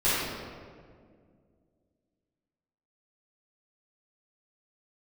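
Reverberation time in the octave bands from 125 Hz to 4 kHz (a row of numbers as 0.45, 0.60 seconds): 2.7, 2.8, 2.3, 1.7, 1.4, 1.1 seconds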